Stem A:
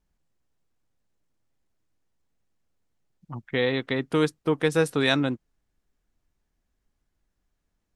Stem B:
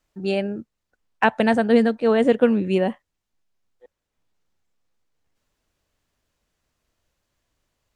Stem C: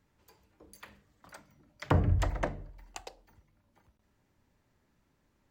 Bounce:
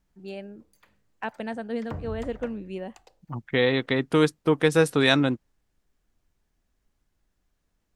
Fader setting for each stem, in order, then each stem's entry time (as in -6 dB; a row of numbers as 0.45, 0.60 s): +2.5, -14.5, -10.0 dB; 0.00, 0.00, 0.00 s